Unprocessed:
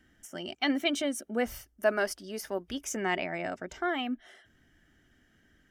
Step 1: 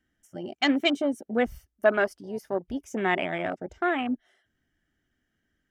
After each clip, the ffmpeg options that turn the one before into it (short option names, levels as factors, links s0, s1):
-af "afwtdn=0.0158,volume=1.78"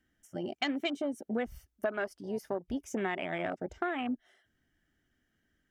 -af "acompressor=threshold=0.0316:ratio=6"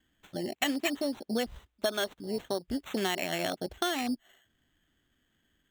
-af "acrusher=samples=9:mix=1:aa=0.000001,equalizer=f=3500:w=2:g=6.5,volume=1.26"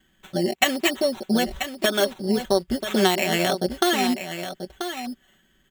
-af "aecho=1:1:5.3:0.65,aecho=1:1:986:0.335,volume=2.66"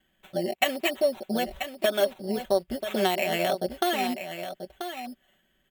-af "equalizer=f=630:t=o:w=0.67:g=9,equalizer=f=2500:t=o:w=0.67:g=5,equalizer=f=6300:t=o:w=0.67:g=-4,equalizer=f=16000:t=o:w=0.67:g=7,volume=0.376"